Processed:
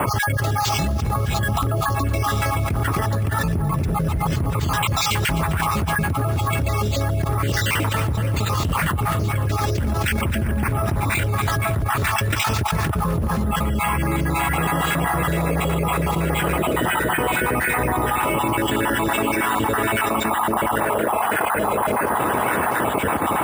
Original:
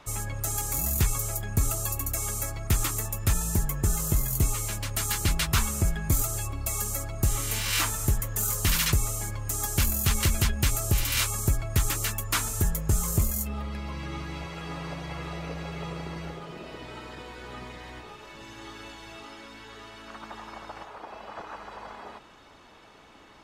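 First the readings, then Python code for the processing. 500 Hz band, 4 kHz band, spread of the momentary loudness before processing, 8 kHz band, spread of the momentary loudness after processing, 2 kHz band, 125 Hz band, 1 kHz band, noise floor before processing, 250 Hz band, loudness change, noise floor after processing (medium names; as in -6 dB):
+15.5 dB, +5.5 dB, 18 LU, -2.0 dB, 2 LU, +13.0 dB, +8.5 dB, +17.5 dB, -52 dBFS, +12.5 dB, +6.5 dB, -23 dBFS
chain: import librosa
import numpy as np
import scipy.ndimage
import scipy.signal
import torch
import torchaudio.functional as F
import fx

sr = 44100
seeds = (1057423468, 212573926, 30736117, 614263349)

p1 = fx.spec_dropout(x, sr, seeds[0], share_pct=45)
p2 = fx.env_lowpass(p1, sr, base_hz=1500.0, full_db=-25.0)
p3 = (np.mod(10.0 ** (19.0 / 20.0) * p2 + 1.0, 2.0) - 1.0) / 10.0 ** (19.0 / 20.0)
p4 = p2 + F.gain(torch.from_numpy(p3), -10.0).numpy()
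p5 = fx.env_lowpass_down(p4, sr, base_hz=1200.0, full_db=-22.5)
p6 = scipy.signal.sosfilt(scipy.signal.butter(4, 72.0, 'highpass', fs=sr, output='sos'), p5)
p7 = fx.notch(p6, sr, hz=4300.0, q=5.5)
p8 = p7 + fx.echo_feedback(p7, sr, ms=259, feedback_pct=58, wet_db=-12.5, dry=0)
p9 = np.repeat(p8[::4], 4)[:len(p8)]
y = fx.env_flatten(p9, sr, amount_pct=100)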